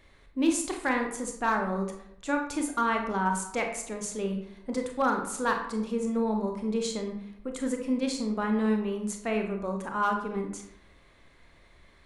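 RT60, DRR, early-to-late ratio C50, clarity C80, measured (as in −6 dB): 0.75 s, 3.0 dB, 6.0 dB, 10.0 dB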